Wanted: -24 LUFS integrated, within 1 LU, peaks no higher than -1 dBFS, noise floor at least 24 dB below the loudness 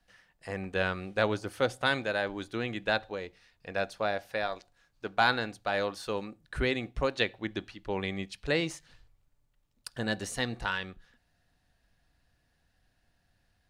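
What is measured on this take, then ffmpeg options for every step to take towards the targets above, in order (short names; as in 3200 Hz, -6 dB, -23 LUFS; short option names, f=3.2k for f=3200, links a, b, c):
loudness -32.0 LUFS; peak -10.5 dBFS; loudness target -24.0 LUFS
-> -af "volume=8dB"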